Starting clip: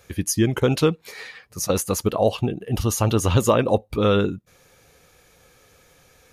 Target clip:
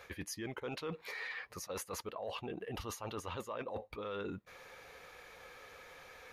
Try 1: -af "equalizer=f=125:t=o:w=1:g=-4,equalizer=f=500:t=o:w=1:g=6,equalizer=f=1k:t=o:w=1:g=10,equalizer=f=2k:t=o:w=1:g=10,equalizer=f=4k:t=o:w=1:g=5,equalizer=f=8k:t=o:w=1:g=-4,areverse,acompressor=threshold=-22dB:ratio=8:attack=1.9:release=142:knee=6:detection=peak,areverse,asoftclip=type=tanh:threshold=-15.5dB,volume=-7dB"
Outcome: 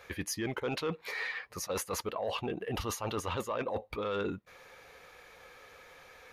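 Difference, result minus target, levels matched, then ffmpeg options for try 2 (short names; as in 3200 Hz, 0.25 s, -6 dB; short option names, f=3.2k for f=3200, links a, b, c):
compressor: peak gain reduction -8 dB
-af "equalizer=f=125:t=o:w=1:g=-4,equalizer=f=500:t=o:w=1:g=6,equalizer=f=1k:t=o:w=1:g=10,equalizer=f=2k:t=o:w=1:g=10,equalizer=f=4k:t=o:w=1:g=5,equalizer=f=8k:t=o:w=1:g=-4,areverse,acompressor=threshold=-31dB:ratio=8:attack=1.9:release=142:knee=6:detection=peak,areverse,asoftclip=type=tanh:threshold=-15.5dB,volume=-7dB"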